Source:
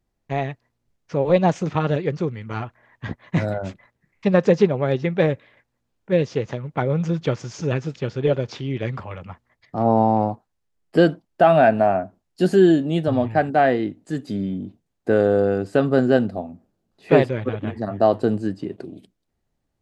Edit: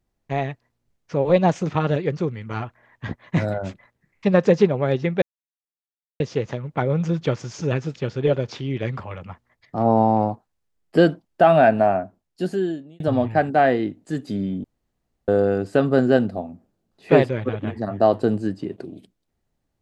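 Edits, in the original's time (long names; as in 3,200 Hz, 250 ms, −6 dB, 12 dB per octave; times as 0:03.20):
0:05.22–0:06.20: silence
0:11.86–0:13.00: fade out
0:14.64–0:15.28: fill with room tone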